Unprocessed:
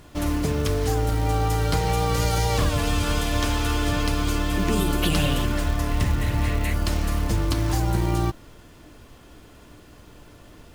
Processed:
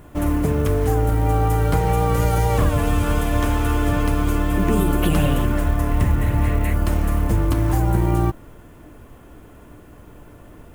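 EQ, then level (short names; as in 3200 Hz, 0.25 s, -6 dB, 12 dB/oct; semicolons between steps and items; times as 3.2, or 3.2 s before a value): bell 4600 Hz -15 dB 1.5 oct; +4.5 dB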